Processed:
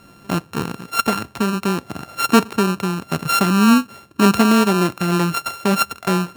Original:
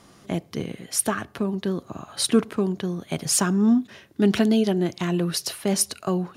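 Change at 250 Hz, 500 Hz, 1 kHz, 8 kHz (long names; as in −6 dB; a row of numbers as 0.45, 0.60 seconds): +5.0, +3.5, +14.0, −2.5 decibels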